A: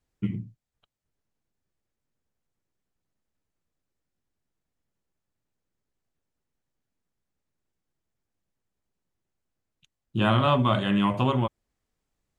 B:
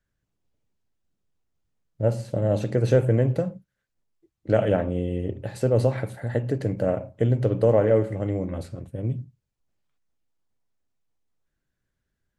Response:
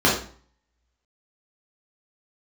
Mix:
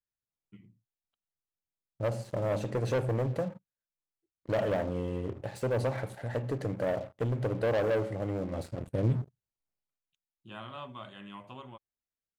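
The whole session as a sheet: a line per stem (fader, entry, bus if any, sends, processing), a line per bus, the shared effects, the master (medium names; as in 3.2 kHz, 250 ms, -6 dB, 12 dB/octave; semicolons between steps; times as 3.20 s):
-18.5 dB, 0.30 s, no send, bass shelf 450 Hz -6 dB
8.50 s -16 dB -> 8.94 s -8.5 dB -> 9.75 s -8.5 dB -> 10.36 s -19.5 dB, 0.00 s, no send, peaking EQ 750 Hz +4.5 dB 1 oct; waveshaping leveller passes 3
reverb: none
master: bass shelf 200 Hz -3 dB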